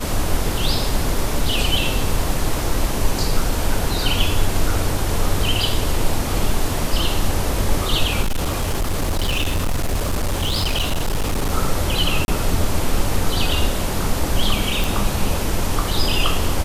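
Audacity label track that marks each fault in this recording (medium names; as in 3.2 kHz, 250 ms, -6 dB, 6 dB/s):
8.220000	11.510000	clipped -16 dBFS
12.250000	12.280000	dropout 31 ms
14.840000	14.840000	pop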